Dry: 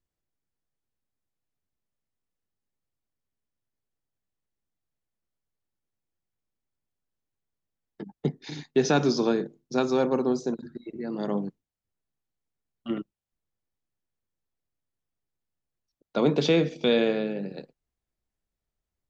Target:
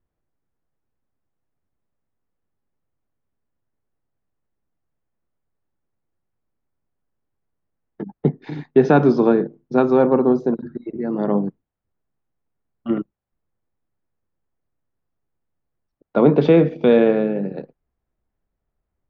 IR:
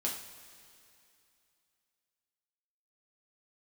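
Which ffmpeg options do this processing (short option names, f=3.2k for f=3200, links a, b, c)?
-af "lowpass=1.5k,volume=9dB"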